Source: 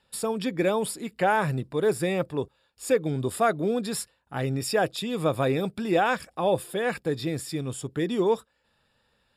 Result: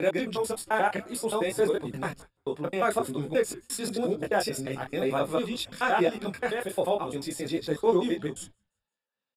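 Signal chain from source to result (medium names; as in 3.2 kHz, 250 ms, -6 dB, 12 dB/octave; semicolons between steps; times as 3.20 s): slices played last to first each 88 ms, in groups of 8; high-pass 190 Hz 12 dB/octave; frequency-shifting echo 172 ms, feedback 47%, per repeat -120 Hz, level -22 dB; gate -45 dBFS, range -19 dB; detune thickener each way 18 cents; trim +2.5 dB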